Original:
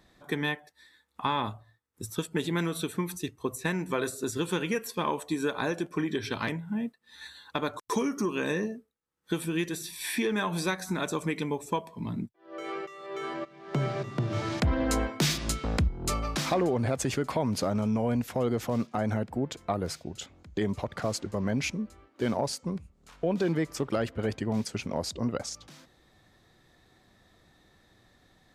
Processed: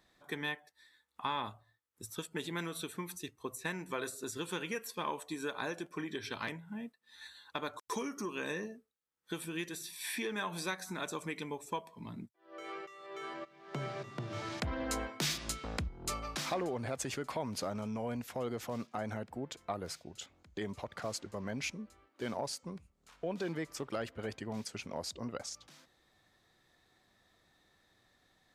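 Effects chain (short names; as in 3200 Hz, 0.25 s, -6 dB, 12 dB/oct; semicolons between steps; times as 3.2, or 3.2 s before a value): low shelf 460 Hz -7.5 dB; gain -5.5 dB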